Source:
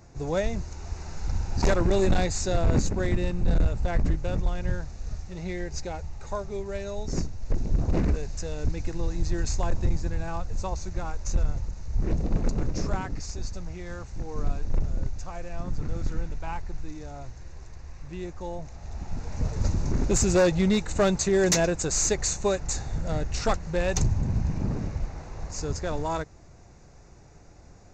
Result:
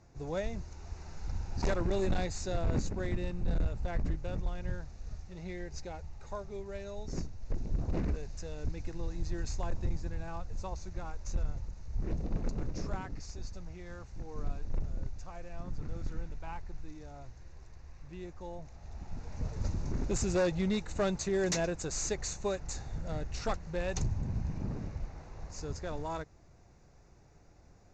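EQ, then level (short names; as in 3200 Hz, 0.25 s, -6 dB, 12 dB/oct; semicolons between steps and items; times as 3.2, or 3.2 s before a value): LPF 6900 Hz 12 dB/oct; -8.5 dB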